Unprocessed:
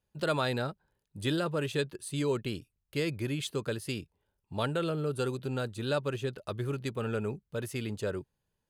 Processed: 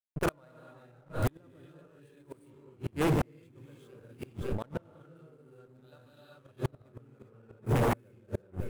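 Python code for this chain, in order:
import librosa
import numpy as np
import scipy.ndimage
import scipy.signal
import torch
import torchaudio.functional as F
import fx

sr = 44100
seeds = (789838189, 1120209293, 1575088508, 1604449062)

p1 = fx.notch(x, sr, hz=430.0, q=12.0)
p2 = fx.level_steps(p1, sr, step_db=14)
p3 = p1 + F.gain(torch.from_numpy(p2), 1.5).numpy()
p4 = fx.graphic_eq_15(p3, sr, hz=(100, 400, 4000), db=(-9, -7, 11), at=(5.75, 6.28))
p5 = fx.rev_gated(p4, sr, seeds[0], gate_ms=430, shape='rising', drr_db=-6.5)
p6 = fx.backlash(p5, sr, play_db=-26.5)
p7 = p6 + 10.0 ** (-23.0 / 20.0) * np.pad(p6, (int(559 * sr / 1000.0), 0))[:len(p6)]
p8 = fx.gate_flip(p7, sr, shuts_db=-18.0, range_db=-41)
p9 = fx.over_compress(p8, sr, threshold_db=-40.0, ratio=-1.0, at=(3.56, 4.76))
p10 = 10.0 ** (-28.5 / 20.0) * (np.abs((p9 / 10.0 ** (-28.5 / 20.0) + 3.0) % 4.0 - 2.0) - 1.0)
p11 = fx.peak_eq(p10, sr, hz=4200.0, db=-9.5, octaves=1.8)
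y = F.gain(torch.from_numpy(p11), 8.5).numpy()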